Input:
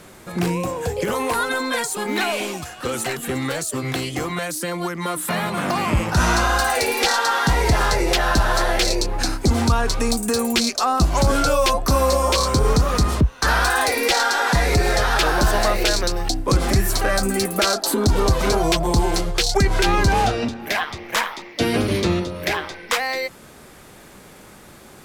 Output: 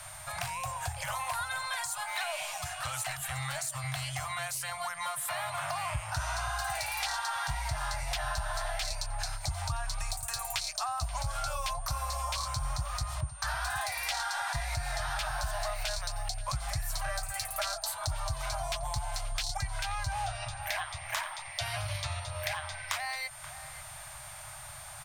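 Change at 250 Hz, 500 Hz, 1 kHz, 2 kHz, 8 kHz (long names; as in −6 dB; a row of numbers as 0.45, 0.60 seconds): below −30 dB, −20.5 dB, −13.0 dB, −13.0 dB, −10.5 dB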